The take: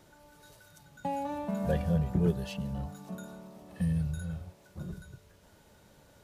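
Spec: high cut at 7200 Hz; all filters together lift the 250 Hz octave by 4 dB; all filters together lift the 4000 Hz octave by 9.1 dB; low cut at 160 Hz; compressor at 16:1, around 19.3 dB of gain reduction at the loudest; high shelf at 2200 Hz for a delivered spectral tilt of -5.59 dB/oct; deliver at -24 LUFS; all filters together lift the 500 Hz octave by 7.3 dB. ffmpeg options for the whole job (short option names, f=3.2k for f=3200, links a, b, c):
-af "highpass=160,lowpass=7.2k,equalizer=f=250:t=o:g=8.5,equalizer=f=500:t=o:g=6,highshelf=f=2.2k:g=7.5,equalizer=f=4k:t=o:g=5,acompressor=threshold=-38dB:ratio=16,volume=20.5dB"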